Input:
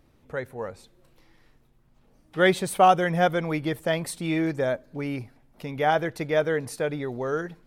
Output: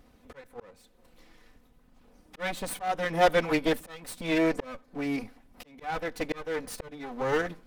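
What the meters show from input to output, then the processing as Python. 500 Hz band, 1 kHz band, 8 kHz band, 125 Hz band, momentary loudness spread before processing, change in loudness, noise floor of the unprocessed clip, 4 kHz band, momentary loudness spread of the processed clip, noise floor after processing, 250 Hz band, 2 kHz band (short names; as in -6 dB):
-5.0 dB, -7.5 dB, -4.0 dB, -9.5 dB, 16 LU, -4.5 dB, -61 dBFS, -3.0 dB, 18 LU, -62 dBFS, -3.5 dB, -4.0 dB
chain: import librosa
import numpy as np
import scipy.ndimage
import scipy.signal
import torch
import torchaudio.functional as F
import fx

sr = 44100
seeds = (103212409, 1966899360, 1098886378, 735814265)

y = fx.lower_of_two(x, sr, delay_ms=4.0)
y = fx.auto_swell(y, sr, attack_ms=593.0)
y = y * librosa.db_to_amplitude(3.5)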